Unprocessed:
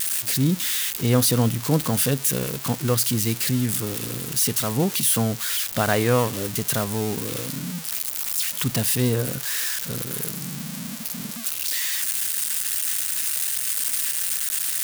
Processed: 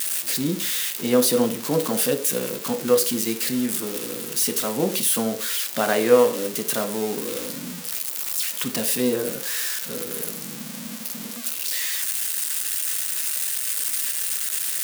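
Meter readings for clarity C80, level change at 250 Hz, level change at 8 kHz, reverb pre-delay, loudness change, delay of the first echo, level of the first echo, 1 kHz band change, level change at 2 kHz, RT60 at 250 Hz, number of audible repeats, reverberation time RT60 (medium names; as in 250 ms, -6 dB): 16.0 dB, -0.5 dB, -0.5 dB, 6 ms, -0.5 dB, no echo, no echo, 0.0 dB, -0.5 dB, 0.45 s, no echo, 0.45 s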